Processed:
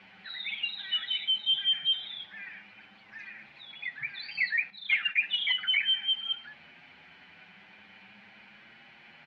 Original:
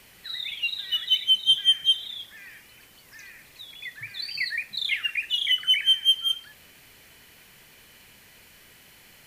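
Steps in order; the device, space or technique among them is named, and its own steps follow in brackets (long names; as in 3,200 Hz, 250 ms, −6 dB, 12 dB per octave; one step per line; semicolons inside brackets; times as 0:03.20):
barber-pole flanger into a guitar amplifier (barber-pole flanger 7.5 ms +0.39 Hz; soft clipping −21.5 dBFS, distortion −9 dB; loudspeaker in its box 110–3,700 Hz, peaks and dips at 120 Hz −4 dB, 200 Hz +9 dB, 450 Hz −5 dB, 800 Hz +10 dB, 1,500 Hz +7 dB, 2,300 Hz +6 dB)
0:04.70–0:05.20: noise gate −32 dBFS, range −9 dB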